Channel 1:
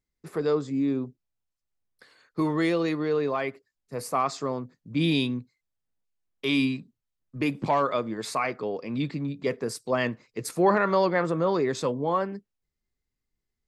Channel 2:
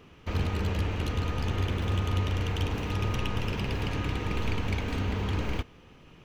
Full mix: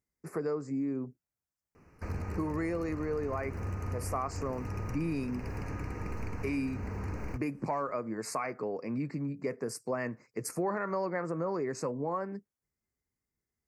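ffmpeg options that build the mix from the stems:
ffmpeg -i stem1.wav -i stem2.wav -filter_complex "[0:a]highpass=62,volume=-1dB[link_01];[1:a]adelay=1750,volume=-6dB[link_02];[link_01][link_02]amix=inputs=2:normalize=0,asuperstop=centerf=3400:order=4:qfactor=1.2,acompressor=threshold=-32dB:ratio=3" out.wav

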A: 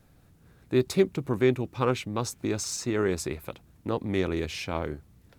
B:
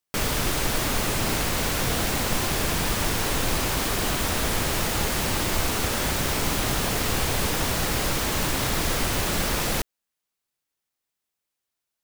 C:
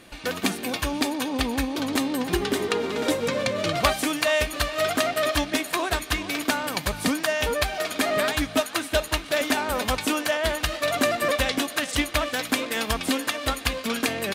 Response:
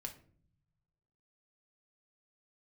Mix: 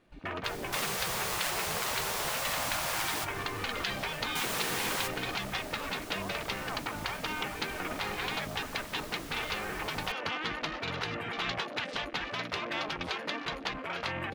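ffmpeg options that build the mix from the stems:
-filter_complex "[0:a]dynaudnorm=framelen=190:gausssize=13:maxgain=11.5dB,acrusher=samples=33:mix=1:aa=0.000001:lfo=1:lforange=52.8:lforate=1.7,volume=-13.5dB,asplit=3[link_01][link_02][link_03];[link_01]atrim=end=3.03,asetpts=PTS-STARTPTS,afade=type=out:start_time=3.026:duration=0.004:curve=hsin[link_04];[link_02]atrim=start=3.03:end=4.35,asetpts=PTS-STARTPTS,volume=0[link_05];[link_03]atrim=start=4.35,asetpts=PTS-STARTPTS,afade=type=in:duration=0.004:curve=hsin[link_06];[link_04][link_05][link_06]concat=n=3:v=0:a=1,asplit=2[link_07][link_08];[1:a]adelay=300,volume=-7dB[link_09];[2:a]afwtdn=0.02,lowpass=frequency=1600:poles=1,volume=1dB[link_10];[link_08]apad=whole_len=544025[link_11];[link_09][link_11]sidechaingate=range=-13dB:threshold=-58dB:ratio=16:detection=peak[link_12];[link_07][link_12][link_10]amix=inputs=3:normalize=0,afftfilt=real='re*lt(hypot(re,im),0.112)':imag='im*lt(hypot(re,im),0.112)':win_size=1024:overlap=0.75"

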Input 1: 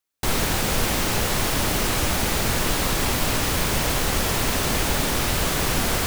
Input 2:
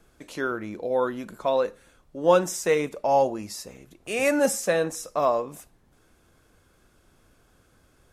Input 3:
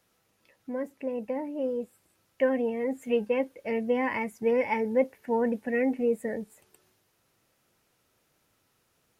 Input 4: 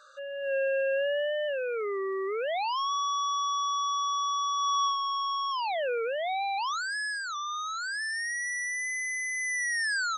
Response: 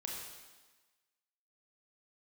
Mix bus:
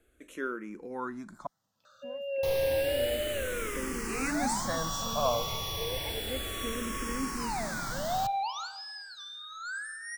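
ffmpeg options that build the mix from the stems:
-filter_complex "[0:a]adelay=2200,volume=-12.5dB,asplit=2[link_01][link_02];[link_02]volume=-21.5dB[link_03];[1:a]volume=-5.5dB,asplit=3[link_04][link_05][link_06];[link_04]atrim=end=1.47,asetpts=PTS-STARTPTS,afade=type=out:start_time=1.466:duration=0.004:curve=hsin[link_07];[link_05]atrim=start=1.47:end=3.81,asetpts=PTS-STARTPTS,volume=0[link_08];[link_06]atrim=start=3.81,asetpts=PTS-STARTPTS,afade=type=in:duration=0.004:curve=hsin[link_09];[link_07][link_08][link_09]concat=n=3:v=0:a=1[link_10];[2:a]acrossover=split=250[link_11][link_12];[link_12]acompressor=threshold=-39dB:ratio=2[link_13];[link_11][link_13]amix=inputs=2:normalize=0,adelay=1350,volume=-5.5dB[link_14];[3:a]aecho=1:1:1.4:0.61,adelay=1850,volume=-5.5dB,asplit=2[link_15][link_16];[link_16]volume=-6.5dB[link_17];[4:a]atrim=start_sample=2205[link_18];[link_03][link_17]amix=inputs=2:normalize=0[link_19];[link_19][link_18]afir=irnorm=-1:irlink=0[link_20];[link_01][link_10][link_14][link_15][link_20]amix=inputs=5:normalize=0,asplit=2[link_21][link_22];[link_22]afreqshift=-0.31[link_23];[link_21][link_23]amix=inputs=2:normalize=1"

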